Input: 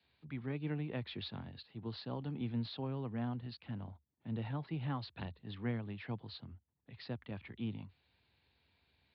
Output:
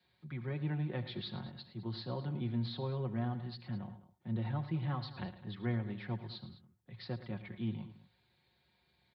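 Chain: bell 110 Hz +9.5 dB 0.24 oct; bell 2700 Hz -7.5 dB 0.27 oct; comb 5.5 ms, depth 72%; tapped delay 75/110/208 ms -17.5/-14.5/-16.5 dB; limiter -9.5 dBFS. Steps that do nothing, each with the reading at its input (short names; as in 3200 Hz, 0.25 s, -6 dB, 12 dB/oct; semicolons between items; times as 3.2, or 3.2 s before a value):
limiter -9.5 dBFS: input peak -23.5 dBFS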